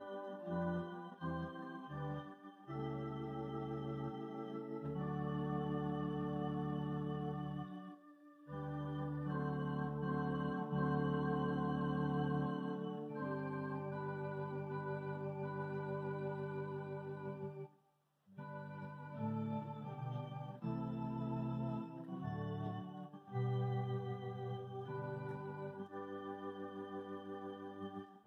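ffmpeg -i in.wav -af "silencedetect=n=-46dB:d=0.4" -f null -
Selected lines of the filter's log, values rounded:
silence_start: 7.94
silence_end: 8.49 | silence_duration: 0.55
silence_start: 17.65
silence_end: 18.38 | silence_duration: 0.73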